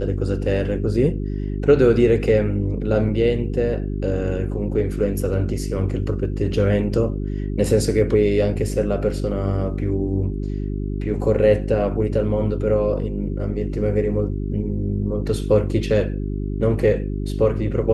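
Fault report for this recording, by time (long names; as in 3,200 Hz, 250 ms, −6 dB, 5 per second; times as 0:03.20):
mains hum 50 Hz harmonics 8 −25 dBFS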